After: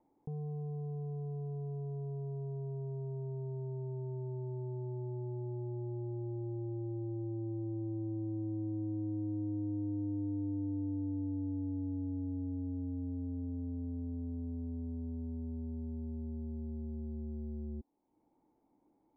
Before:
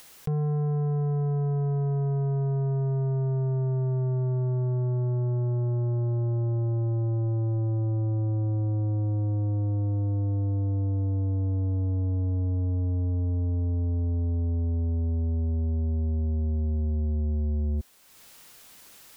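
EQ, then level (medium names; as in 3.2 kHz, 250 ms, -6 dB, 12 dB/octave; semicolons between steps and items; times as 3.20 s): cascade formant filter u; distance through air 440 m; bass shelf 400 Hz -7.5 dB; +6.0 dB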